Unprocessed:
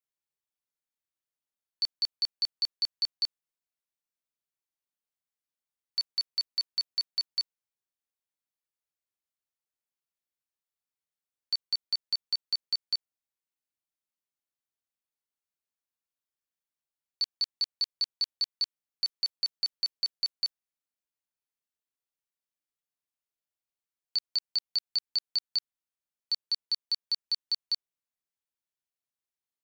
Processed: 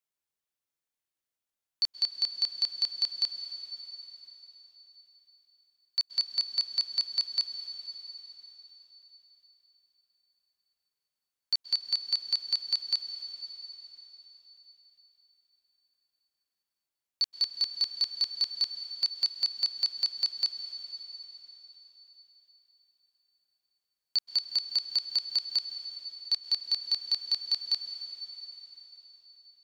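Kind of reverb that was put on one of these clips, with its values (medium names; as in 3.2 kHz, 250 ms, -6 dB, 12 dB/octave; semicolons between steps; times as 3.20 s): plate-style reverb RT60 4.3 s, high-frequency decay 1×, pre-delay 115 ms, DRR 7.5 dB; trim +1.5 dB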